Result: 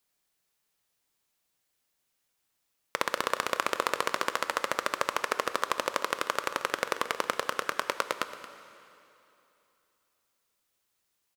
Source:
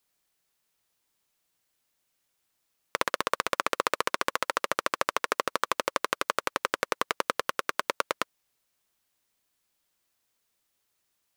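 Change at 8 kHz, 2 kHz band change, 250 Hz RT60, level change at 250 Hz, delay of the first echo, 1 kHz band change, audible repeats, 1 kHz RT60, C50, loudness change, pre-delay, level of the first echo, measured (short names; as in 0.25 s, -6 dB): -1.0 dB, -1.0 dB, 2.8 s, -1.0 dB, 0.226 s, -1.0 dB, 1, 2.9 s, 10.0 dB, -1.0 dB, 7 ms, -14.5 dB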